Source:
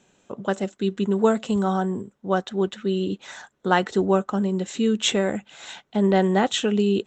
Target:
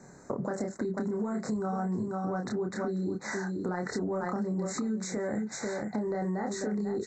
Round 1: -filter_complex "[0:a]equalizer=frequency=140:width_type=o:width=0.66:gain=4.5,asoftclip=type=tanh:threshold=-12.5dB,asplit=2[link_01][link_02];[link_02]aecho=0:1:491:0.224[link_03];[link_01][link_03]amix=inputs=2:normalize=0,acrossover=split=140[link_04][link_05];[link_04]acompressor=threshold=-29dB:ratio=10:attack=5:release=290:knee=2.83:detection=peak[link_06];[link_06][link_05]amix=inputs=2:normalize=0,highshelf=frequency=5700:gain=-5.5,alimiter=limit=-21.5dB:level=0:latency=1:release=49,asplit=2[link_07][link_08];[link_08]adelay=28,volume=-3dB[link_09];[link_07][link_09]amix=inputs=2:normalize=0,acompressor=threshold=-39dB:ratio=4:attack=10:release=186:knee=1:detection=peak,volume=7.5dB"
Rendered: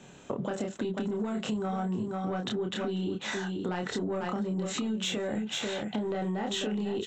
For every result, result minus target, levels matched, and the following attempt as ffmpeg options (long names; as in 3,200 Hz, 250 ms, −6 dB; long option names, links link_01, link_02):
4,000 Hz band +12.5 dB; soft clipping: distortion +13 dB
-filter_complex "[0:a]equalizer=frequency=140:width_type=o:width=0.66:gain=4.5,asoftclip=type=tanh:threshold=-12.5dB,asplit=2[link_01][link_02];[link_02]aecho=0:1:491:0.224[link_03];[link_01][link_03]amix=inputs=2:normalize=0,acrossover=split=140[link_04][link_05];[link_04]acompressor=threshold=-29dB:ratio=10:attack=5:release=290:knee=2.83:detection=peak[link_06];[link_06][link_05]amix=inputs=2:normalize=0,highshelf=frequency=5700:gain=-5.5,alimiter=limit=-21.5dB:level=0:latency=1:release=49,asplit=2[link_07][link_08];[link_08]adelay=28,volume=-3dB[link_09];[link_07][link_09]amix=inputs=2:normalize=0,acompressor=threshold=-39dB:ratio=4:attack=10:release=186:knee=1:detection=peak,asuperstop=centerf=3000:order=8:qfactor=1.4,volume=7.5dB"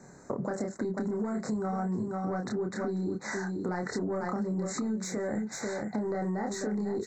soft clipping: distortion +13 dB
-filter_complex "[0:a]equalizer=frequency=140:width_type=o:width=0.66:gain=4.5,asoftclip=type=tanh:threshold=-3.5dB,asplit=2[link_01][link_02];[link_02]aecho=0:1:491:0.224[link_03];[link_01][link_03]amix=inputs=2:normalize=0,acrossover=split=140[link_04][link_05];[link_04]acompressor=threshold=-29dB:ratio=10:attack=5:release=290:knee=2.83:detection=peak[link_06];[link_06][link_05]amix=inputs=2:normalize=0,highshelf=frequency=5700:gain=-5.5,alimiter=limit=-21.5dB:level=0:latency=1:release=49,asplit=2[link_07][link_08];[link_08]adelay=28,volume=-3dB[link_09];[link_07][link_09]amix=inputs=2:normalize=0,acompressor=threshold=-39dB:ratio=4:attack=10:release=186:knee=1:detection=peak,asuperstop=centerf=3000:order=8:qfactor=1.4,volume=7.5dB"